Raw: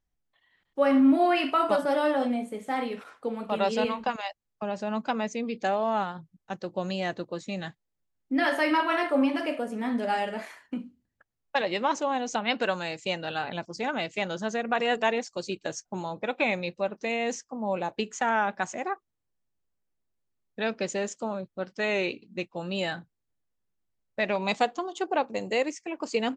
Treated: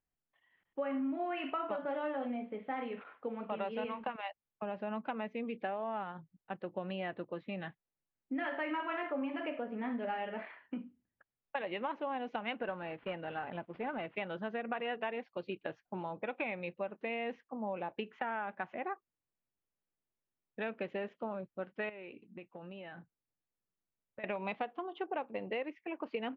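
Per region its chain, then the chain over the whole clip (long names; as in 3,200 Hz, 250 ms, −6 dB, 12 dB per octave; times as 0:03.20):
0:12.56–0:14.16: variable-slope delta modulation 32 kbit/s + low-pass filter 1,600 Hz 6 dB per octave
0:21.89–0:24.24: high-frequency loss of the air 150 metres + downward compressor 16 to 1, threshold −37 dBFS
whole clip: Butterworth low-pass 3,000 Hz 36 dB per octave; low-shelf EQ 81 Hz −10.5 dB; downward compressor 5 to 1, threshold −29 dBFS; level −5 dB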